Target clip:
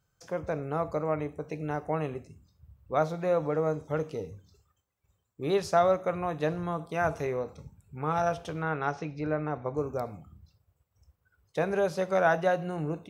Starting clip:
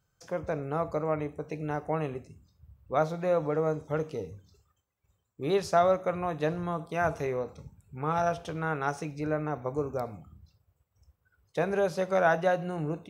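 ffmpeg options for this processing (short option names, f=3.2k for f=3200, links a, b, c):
-filter_complex "[0:a]asettb=1/sr,asplit=3[a][b][c];[a]atrim=end=8.624[d];[b]atrim=start=8.62:end=9.77,asetpts=PTS-STARTPTS,afade=t=in:d=0.004:c=qsin,afade=t=out:st=1.146:d=0.004:c=qsin,lowpass=f=5k:w=0.5412,lowpass=f=5k:w=1.3066[e];[c]atrim=start=9.766[f];[d][e]acrossfade=d=0.004:c1=hsin:c2=qsin[g];[g][f]acrossfade=d=0.004:c1=qsin:c2=hsin"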